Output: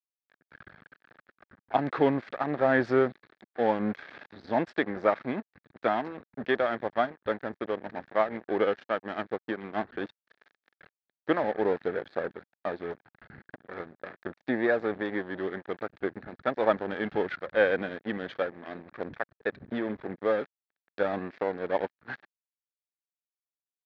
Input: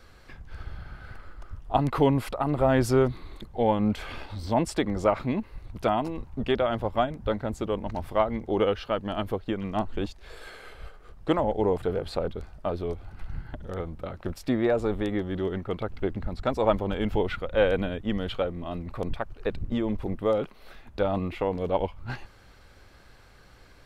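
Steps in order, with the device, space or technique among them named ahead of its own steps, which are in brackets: blown loudspeaker (crossover distortion -36 dBFS; speaker cabinet 220–3800 Hz, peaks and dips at 1000 Hz -4 dB, 1700 Hz +10 dB, 2900 Hz -7 dB)

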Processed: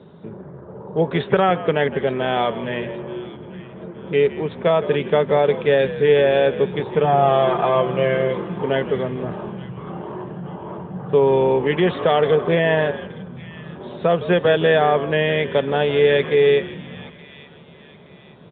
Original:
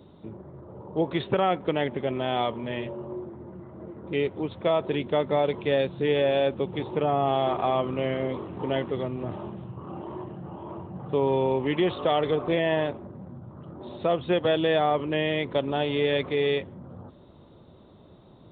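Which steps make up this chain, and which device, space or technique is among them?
frequency-shifting delay pedal into a guitar cabinet (frequency-shifting echo 0.162 s, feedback 30%, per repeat -65 Hz, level -14 dB; speaker cabinet 94–3700 Hz, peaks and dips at 97 Hz -5 dB, 170 Hz +6 dB, 310 Hz -7 dB, 430 Hz +6 dB, 1600 Hz +8 dB); 7.04–8.59 comb 5.8 ms, depth 60%; thin delay 0.872 s, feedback 39%, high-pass 2100 Hz, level -15 dB; gain +5.5 dB

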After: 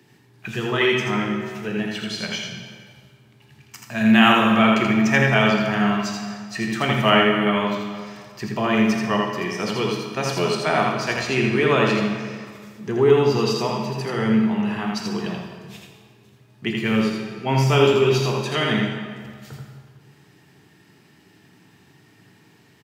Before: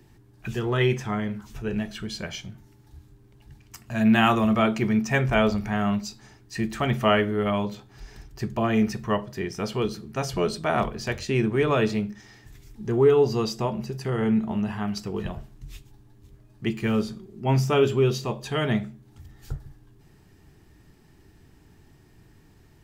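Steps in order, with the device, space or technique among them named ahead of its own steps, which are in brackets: PA in a hall (HPF 130 Hz 24 dB/oct; bell 2700 Hz +6.5 dB 2.1 oct; echo 82 ms -4 dB; reverb RT60 1.9 s, pre-delay 21 ms, DRR 3 dB)

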